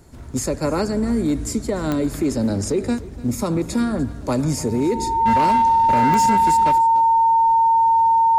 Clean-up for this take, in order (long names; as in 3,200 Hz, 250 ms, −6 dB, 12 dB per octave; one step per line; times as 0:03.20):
clipped peaks rebuilt −12 dBFS
click removal
notch filter 910 Hz, Q 30
echo removal 296 ms −19 dB